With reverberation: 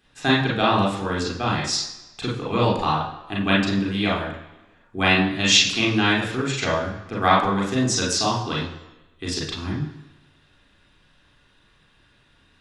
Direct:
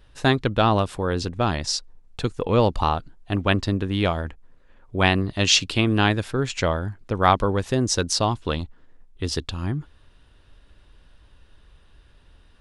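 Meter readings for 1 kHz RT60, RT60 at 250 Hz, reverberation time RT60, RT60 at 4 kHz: 1.0 s, 0.95 s, 1.0 s, 1.0 s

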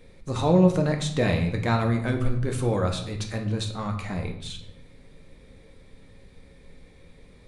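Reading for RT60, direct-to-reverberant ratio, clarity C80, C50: 0.75 s, 3.0 dB, 11.5 dB, 9.0 dB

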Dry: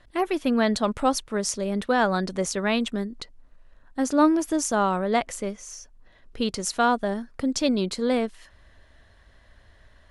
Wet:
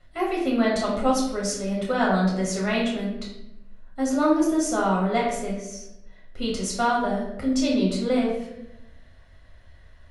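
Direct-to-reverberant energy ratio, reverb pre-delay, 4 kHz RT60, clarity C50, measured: -5.0 dB, 7 ms, 0.60 s, 3.0 dB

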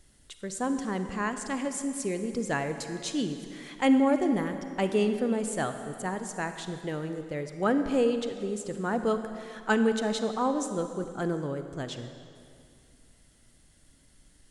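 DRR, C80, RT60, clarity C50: 8.0 dB, 9.0 dB, 2.4 s, 8.0 dB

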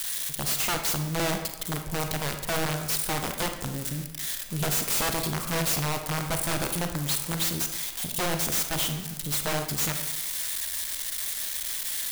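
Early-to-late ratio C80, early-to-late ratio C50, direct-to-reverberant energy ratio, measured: 9.5 dB, 7.0 dB, 5.5 dB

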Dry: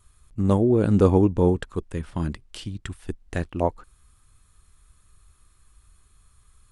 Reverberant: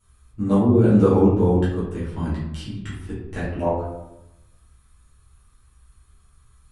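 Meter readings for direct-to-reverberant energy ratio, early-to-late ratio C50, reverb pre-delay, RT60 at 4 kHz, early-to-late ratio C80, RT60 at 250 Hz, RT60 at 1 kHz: -11.0 dB, 1.5 dB, 6 ms, 0.50 s, 5.5 dB, 1.2 s, 0.85 s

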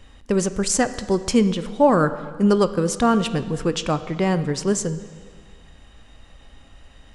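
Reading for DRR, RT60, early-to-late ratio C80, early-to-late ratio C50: 11.5 dB, 1.6 s, 14.0 dB, 13.0 dB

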